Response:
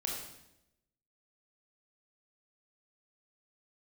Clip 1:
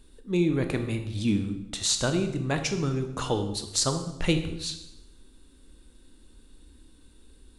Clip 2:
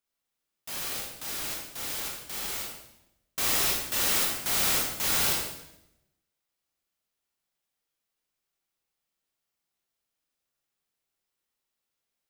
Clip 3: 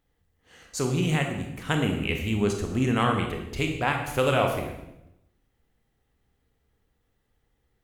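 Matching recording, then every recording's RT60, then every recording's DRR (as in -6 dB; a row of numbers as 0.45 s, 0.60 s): 2; 0.85 s, 0.85 s, 0.85 s; 7.0 dB, -2.0 dB, 2.5 dB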